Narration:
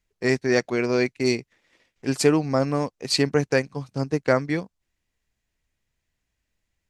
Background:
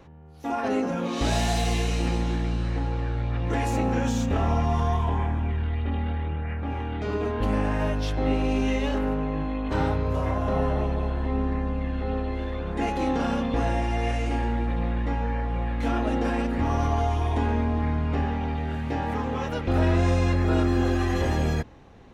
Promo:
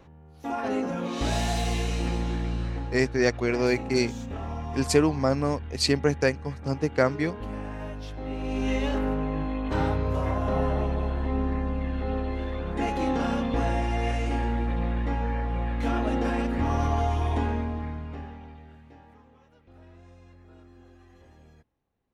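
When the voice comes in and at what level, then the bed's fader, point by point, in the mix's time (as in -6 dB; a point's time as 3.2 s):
2.70 s, -2.0 dB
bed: 2.63 s -2.5 dB
3.14 s -10.5 dB
8.28 s -10.5 dB
8.73 s -1 dB
17.36 s -1 dB
19.45 s -30 dB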